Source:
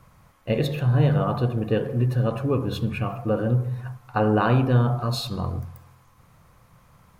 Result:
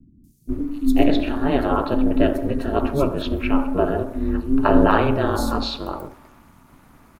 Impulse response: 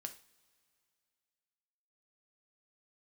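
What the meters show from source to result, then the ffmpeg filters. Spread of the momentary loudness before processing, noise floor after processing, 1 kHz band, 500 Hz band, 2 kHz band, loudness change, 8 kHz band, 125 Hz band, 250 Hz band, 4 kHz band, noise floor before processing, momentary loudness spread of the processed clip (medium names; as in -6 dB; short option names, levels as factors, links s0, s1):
11 LU, -53 dBFS, +5.5 dB, +4.5 dB, +4.5 dB, +2.5 dB, no reading, -7.5 dB, +7.0 dB, +3.5 dB, -57 dBFS, 11 LU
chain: -filter_complex "[0:a]acrossover=split=200|5300[s0][s1][s2];[s2]adelay=240[s3];[s1]adelay=490[s4];[s0][s4][s3]amix=inputs=3:normalize=0,aeval=exprs='val(0)*sin(2*PI*140*n/s)':c=same,volume=2.51"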